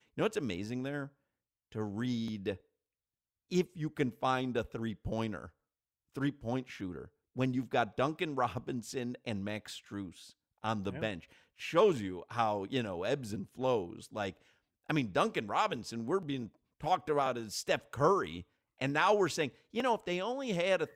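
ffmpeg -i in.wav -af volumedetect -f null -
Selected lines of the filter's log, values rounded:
mean_volume: -35.0 dB
max_volume: -15.1 dB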